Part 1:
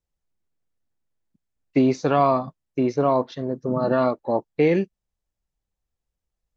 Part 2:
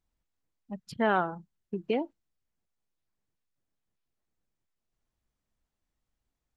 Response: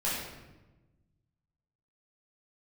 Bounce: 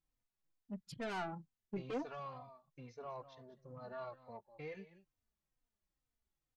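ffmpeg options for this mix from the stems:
-filter_complex "[0:a]equalizer=f=300:t=o:w=1.1:g=-14.5,volume=0.112,asplit=2[s0][s1];[s1]volume=0.158[s2];[1:a]volume=0.668[s3];[s2]aecho=0:1:198:1[s4];[s0][s3][s4]amix=inputs=3:normalize=0,asoftclip=type=tanh:threshold=0.0237,asplit=2[s5][s6];[s6]adelay=3.2,afreqshift=-2.2[s7];[s5][s7]amix=inputs=2:normalize=1"

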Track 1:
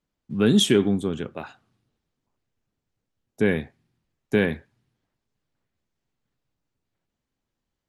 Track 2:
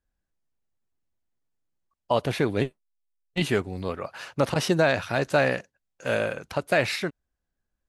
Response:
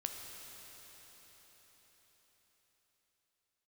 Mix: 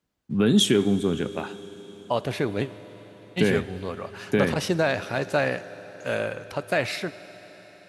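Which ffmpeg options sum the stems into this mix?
-filter_complex "[0:a]alimiter=limit=0.224:level=0:latency=1:release=427,volume=1.12,asplit=2[s0][s1];[s1]volume=0.355[s2];[1:a]volume=0.596,asplit=2[s3][s4];[s4]volume=0.447[s5];[2:a]atrim=start_sample=2205[s6];[s2][s5]amix=inputs=2:normalize=0[s7];[s7][s6]afir=irnorm=-1:irlink=0[s8];[s0][s3][s8]amix=inputs=3:normalize=0,highpass=59"

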